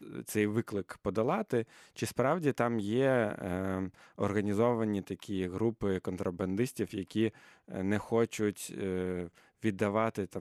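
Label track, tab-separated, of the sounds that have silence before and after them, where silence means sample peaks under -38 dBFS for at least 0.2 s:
1.960000	3.880000	sound
4.190000	7.290000	sound
7.710000	9.280000	sound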